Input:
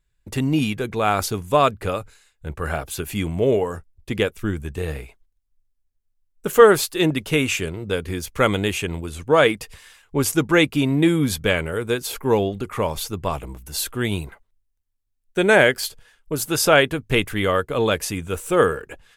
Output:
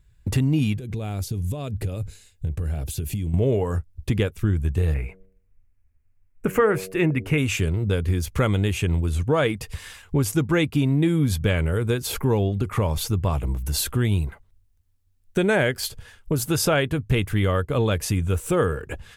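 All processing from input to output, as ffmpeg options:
-filter_complex "[0:a]asettb=1/sr,asplit=3[a][b][c];[a]atrim=end=0.774[d];[b]atrim=start=0.77:end=3.34,asetpts=PTS-STARTPTS,afade=t=in:d=0.004:c=qsin,afade=t=out:st=2.566:d=0.004:c=qsin,equalizer=f=1.2k:t=o:w=1.6:g=-14,acompressor=threshold=-36dB:ratio=10:attack=3.2:release=140:knee=1:detection=peak[e];[c]atrim=start=3.336[f];[d][e]acrossfade=d=0.004:c1=hsin:c2=qsin[g];[g][f]acrossfade=d=0.004:c1=qsin:c2=hsin,asettb=1/sr,asplit=3[h][i][j];[h]atrim=end=4.944[k];[i]atrim=start=4.94:end=7.38,asetpts=PTS-STARTPTS,afade=t=in:d=0.004:c=qsin,afade=t=out:st=2.436:d=0.004:c=qsin,highshelf=f=2.9k:t=q:w=3:g=-7,bandreject=f=94.53:t=h:w=4,bandreject=f=189.06:t=h:w=4,bandreject=f=283.59:t=h:w=4,bandreject=f=378.12:t=h:w=4,bandreject=f=472.65:t=h:w=4,bandreject=f=567.18:t=h:w=4,bandreject=f=661.71:t=h:w=4[l];[j]atrim=start=7.376[m];[k][l]acrossfade=d=0.004:c1=hsin:c2=qsin[n];[n][m]acrossfade=d=0.004:c1=qsin:c2=hsin,equalizer=f=86:t=o:w=2.3:g=13.5,acompressor=threshold=-31dB:ratio=2.5,volume=6.5dB"

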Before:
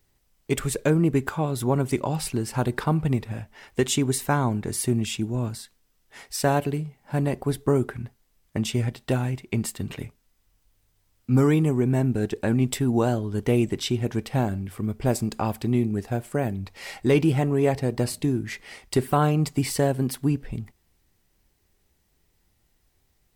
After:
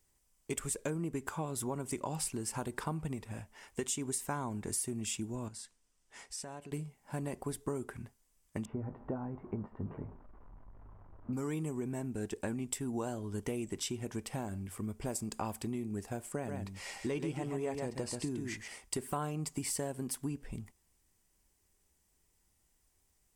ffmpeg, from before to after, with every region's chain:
-filter_complex "[0:a]asettb=1/sr,asplit=3[a][b][c];[a]atrim=end=5.484[d];[b]atrim=start=5.48:end=6.72,asetpts=PTS-STARTPTS,afade=t=in:d=0.004:c=qsin,afade=t=out:st=1.236:d=0.004:c=qsin,lowpass=8.3k,acompressor=threshold=-40dB:ratio=3:attack=3.2:release=140:knee=1:detection=peak[e];[c]atrim=start=6.716[f];[d][e]acrossfade=d=0.004:c1=hsin:c2=qsin[g];[g][f]acrossfade=d=0.004:c1=qsin:c2=hsin,asettb=1/sr,asplit=3[h][i][j];[h]atrim=end=8.654[k];[i]atrim=start=8.65:end=11.33,asetpts=PTS-STARTPTS,afade=t=in:d=0.004:c=qsin,afade=t=out:st=2.676:d=0.004:c=qsin,aeval=exprs='val(0)+0.5*0.0133*sgn(val(0))':c=same,lowpass=f=1.2k:w=0.5412,lowpass=f=1.2k:w=1.3066,asplit=2[l][m];[m]adelay=20,volume=-10dB[n];[l][n]amix=inputs=2:normalize=0,atrim=end_sample=118188[o];[j]atrim=start=11.326[p];[k][o]acrossfade=d=0.004:c1=hsin:c2=qsin[q];[q][p]acrossfade=d=0.004:c1=qsin:c2=hsin,asettb=1/sr,asplit=3[r][s][t];[r]atrim=end=16.324[u];[s]atrim=start=16.32:end=18.68,asetpts=PTS-STARTPTS,afade=t=in:d=0.004:c=qsin,afade=t=out:st=2.356:d=0.004:c=qsin,acrossover=split=7700[v][w];[w]acompressor=threshold=-57dB:ratio=4:attack=1:release=60[x];[v][x]amix=inputs=2:normalize=0,aecho=1:1:134:0.473,atrim=end_sample=104076[y];[t]atrim=start=18.676[z];[u][y]acrossfade=d=0.004:c1=hsin:c2=qsin[aa];[aa][z]acrossfade=d=0.004:c1=qsin:c2=hsin,equalizer=f=8.3k:t=o:w=1.2:g=10.5,acompressor=threshold=-24dB:ratio=6,equalizer=f=125:t=o:w=0.33:g=-6,equalizer=f=1k:t=o:w=0.33:g=4,equalizer=f=4k:t=o:w=0.33:g=-5,volume=-8.5dB"

